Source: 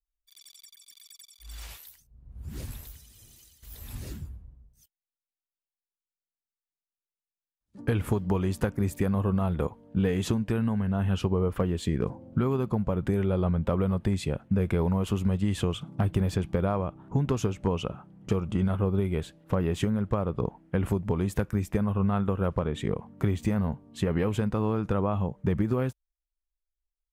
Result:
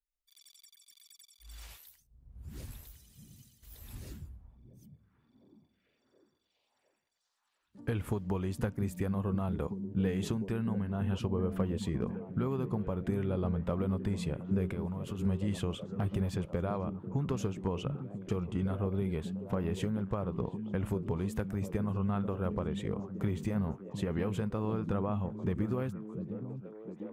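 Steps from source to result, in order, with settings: 14.7–15.19 compressor, threshold -28 dBFS, peak gain reduction 7 dB; delay with a stepping band-pass 0.703 s, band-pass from 170 Hz, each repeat 0.7 oct, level -4 dB; gain -7 dB

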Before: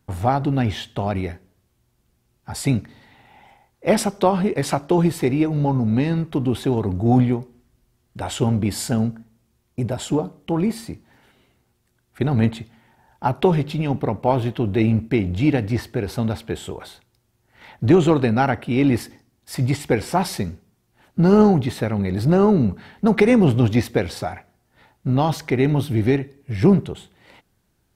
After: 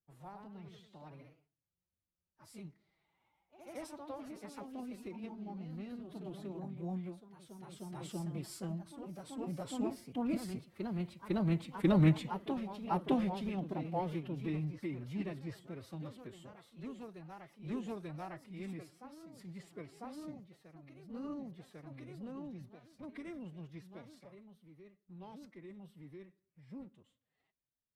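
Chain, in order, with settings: Doppler pass-by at 11.66, 11 m/s, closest 7.1 m; echoes that change speed 0.124 s, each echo +1 st, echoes 3, each echo -6 dB; formant-preserving pitch shift +6 st; gain -6.5 dB

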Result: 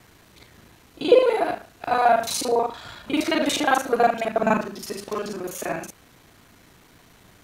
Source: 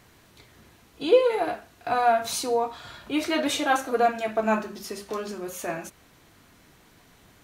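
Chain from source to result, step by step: local time reversal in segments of 36 ms; gain +3.5 dB

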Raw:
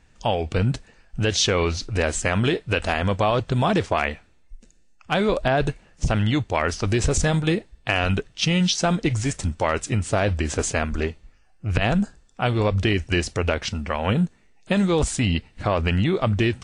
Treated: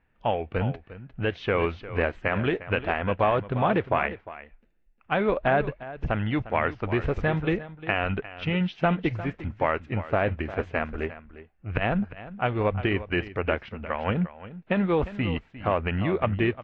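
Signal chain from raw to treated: LPF 2500 Hz 24 dB/oct; low shelf 240 Hz -5.5 dB; on a send: echo 0.353 s -10.5 dB; on the sum: upward expander 1.5:1, over -35 dBFS

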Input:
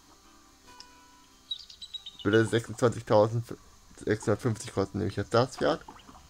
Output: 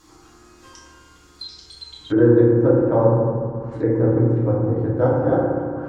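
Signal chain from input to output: FDN reverb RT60 2 s, low-frequency decay 1.5×, high-frequency decay 0.3×, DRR -7 dB; varispeed +7%; treble ducked by the level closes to 870 Hz, closed at -21 dBFS

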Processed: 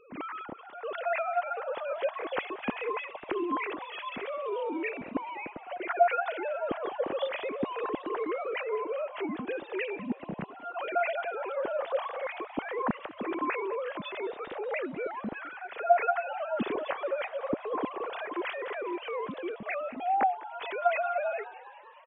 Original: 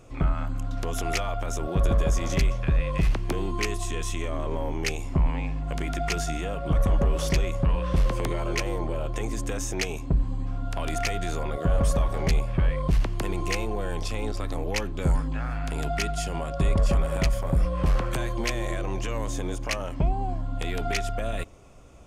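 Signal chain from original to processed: sine-wave speech; frequency-shifting echo 0.202 s, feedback 65%, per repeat +84 Hz, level -18 dB; gain -8 dB

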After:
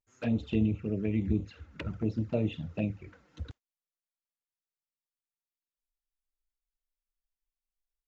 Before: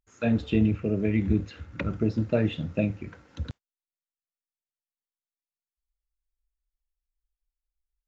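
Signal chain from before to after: envelope flanger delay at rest 8.4 ms, full sweep at -20.5 dBFS; gain -4.5 dB

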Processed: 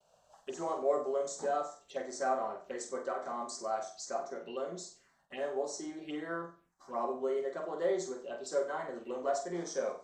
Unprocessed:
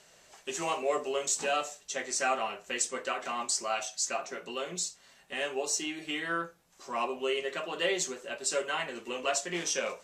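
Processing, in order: bell 540 Hz +6 dB 1.5 oct; envelope phaser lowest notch 300 Hz, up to 2700 Hz, full sweep at -30.5 dBFS; high shelf 4200 Hz -11.5 dB; flutter echo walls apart 8 m, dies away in 0.37 s; expander -59 dBFS; gain -5 dB

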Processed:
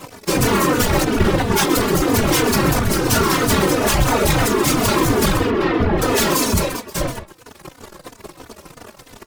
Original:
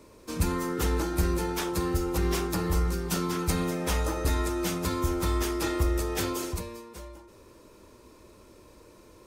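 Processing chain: one-sided fold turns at -26 dBFS; notches 50/100 Hz; reverb removal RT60 0.84 s; 1.04–1.52 LPC vocoder at 8 kHz pitch kept; in parallel at -5 dB: fuzz box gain 47 dB, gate -50 dBFS; 5.37–6.02 on the sum: air absorption 340 m; on a send: echo 0.13 s -10.5 dB; on the sum: whisperiser; endless flanger 3.3 ms -3 Hz; gain +4.5 dB

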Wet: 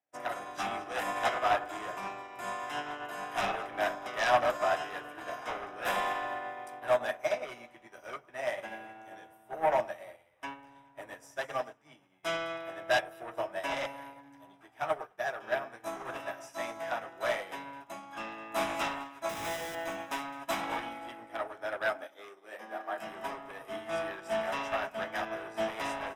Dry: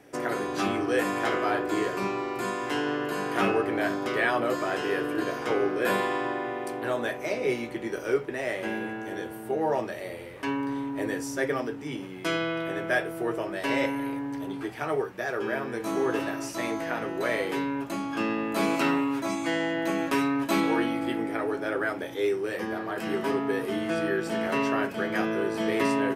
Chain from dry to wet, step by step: 21.93–22.99 Chebyshev high-pass 220 Hz, order 4; sine folder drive 10 dB, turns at -11.5 dBFS; resonant low shelf 530 Hz -6.5 dB, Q 3; 19.29–19.75 Schmitt trigger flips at -29 dBFS; Butterworth band-stop 4400 Hz, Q 7.1; echo with dull and thin repeats by turns 0.106 s, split 1300 Hz, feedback 61%, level -9.5 dB; upward expander 2.5:1, over -38 dBFS; gain -9 dB

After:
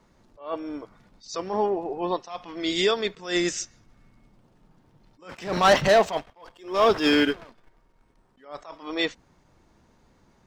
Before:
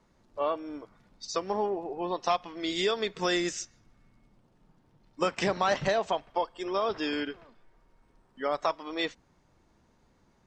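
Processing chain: 5.29–8.45 sample leveller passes 2; attack slew limiter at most 150 dB/s; gain +5.5 dB

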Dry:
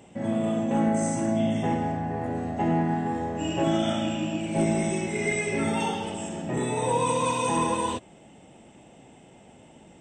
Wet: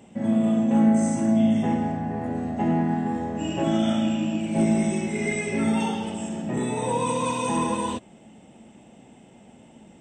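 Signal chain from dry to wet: bell 220 Hz +8.5 dB 0.39 oct; gain -1 dB

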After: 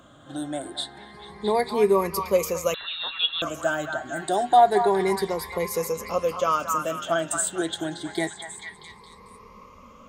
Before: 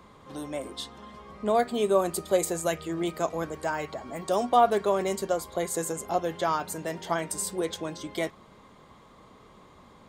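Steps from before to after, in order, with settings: moving spectral ripple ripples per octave 0.85, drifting +0.28 Hz, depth 16 dB; delay with a stepping band-pass 0.222 s, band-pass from 1200 Hz, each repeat 0.7 oct, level -2.5 dB; 2.74–3.42 inverted band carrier 4000 Hz

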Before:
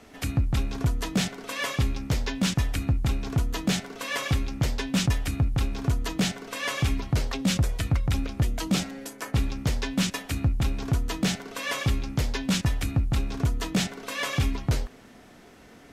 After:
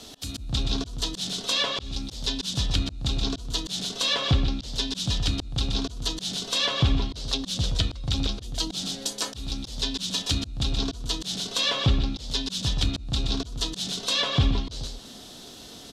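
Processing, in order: self-modulated delay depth 0.052 ms; resonant high shelf 2800 Hz +9.5 dB, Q 3; on a send: echo 0.124 s -9.5 dB; on the sum: auto swell 0.386 s; treble ducked by the level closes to 2100 Hz, closed at -19.5 dBFS; gain +3.5 dB

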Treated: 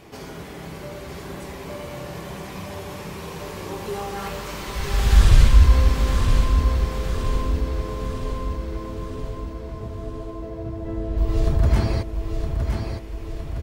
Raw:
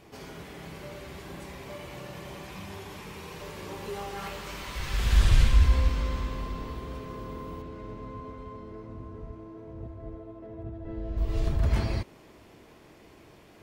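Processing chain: dynamic EQ 2600 Hz, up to -4 dB, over -52 dBFS, Q 0.95; on a send: feedback echo 0.964 s, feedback 54%, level -6 dB; on the sum: gain +7 dB

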